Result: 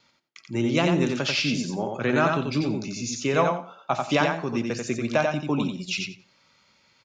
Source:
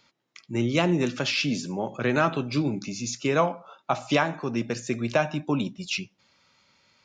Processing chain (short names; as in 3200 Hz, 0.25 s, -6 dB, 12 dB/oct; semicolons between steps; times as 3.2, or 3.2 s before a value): gate with hold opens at -58 dBFS; on a send: feedback echo 89 ms, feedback 17%, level -4 dB